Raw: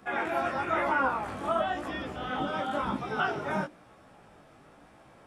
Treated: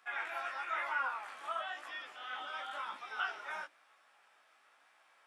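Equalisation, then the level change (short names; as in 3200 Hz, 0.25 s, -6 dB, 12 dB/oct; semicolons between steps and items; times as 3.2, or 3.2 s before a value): HPF 1500 Hz 12 dB/oct; high shelf 4400 Hz -6.5 dB; -2.0 dB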